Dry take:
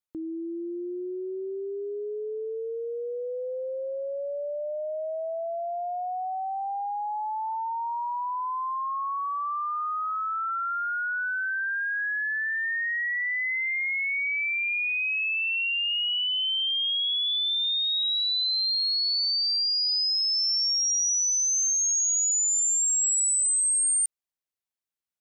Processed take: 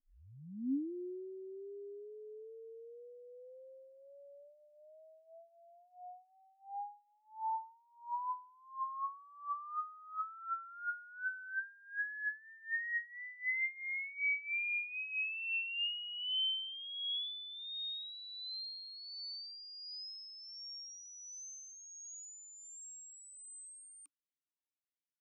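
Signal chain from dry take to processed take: tape start at the beginning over 0.93 s; wow and flutter 18 cents; vowel sweep i-u 1.4 Hz; gain +1.5 dB

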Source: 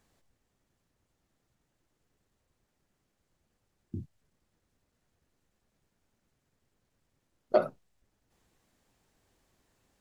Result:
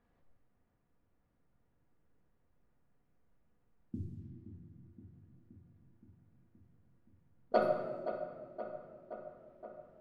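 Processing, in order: low-pass opened by the level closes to 1700 Hz, open at -39 dBFS; darkening echo 0.522 s, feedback 69%, low-pass 2700 Hz, level -10.5 dB; shoebox room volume 2000 m³, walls mixed, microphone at 1.8 m; gain -4 dB

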